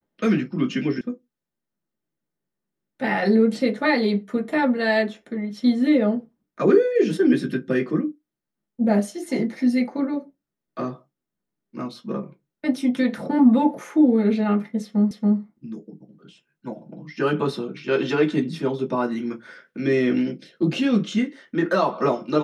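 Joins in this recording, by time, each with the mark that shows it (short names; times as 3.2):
1.01 sound cut off
15.11 repeat of the last 0.28 s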